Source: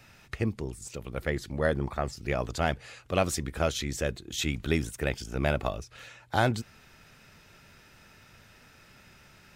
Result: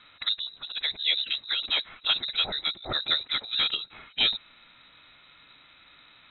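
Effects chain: time stretch by phase-locked vocoder 0.66×; frequency inversion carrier 3.9 kHz; distance through air 91 m; trim +3.5 dB

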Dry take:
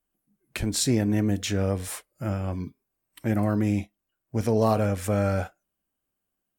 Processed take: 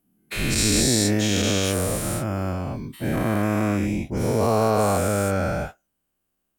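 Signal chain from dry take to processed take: every event in the spectrogram widened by 480 ms; in parallel at -2 dB: peak limiter -10.5 dBFS, peak gain reduction 7 dB; on the sum: trim -6.5 dB

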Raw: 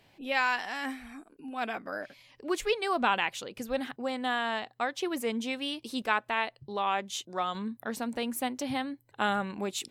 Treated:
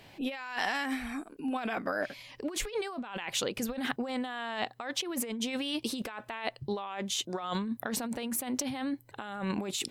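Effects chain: compressor with a negative ratio -38 dBFS, ratio -1; trim +3 dB

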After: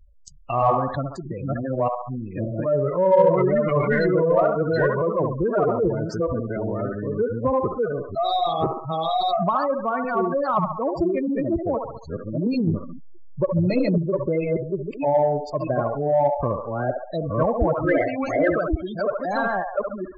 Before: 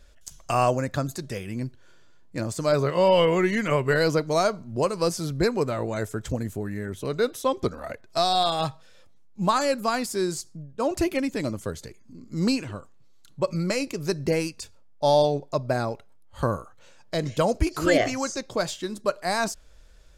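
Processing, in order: chunks repeated in reverse 627 ms, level 0 dB; low-pass 5.7 kHz 12 dB/octave; band-passed feedback delay 69 ms, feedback 59%, band-pass 1 kHz, level -4 dB; spectral gate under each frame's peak -15 dB strong; 12.67–13.98 s: bass shelf 420 Hz +7.5 dB; in parallel at -10 dB: saturation -15.5 dBFS, distortion -15 dB; on the sum: trim -2 dB

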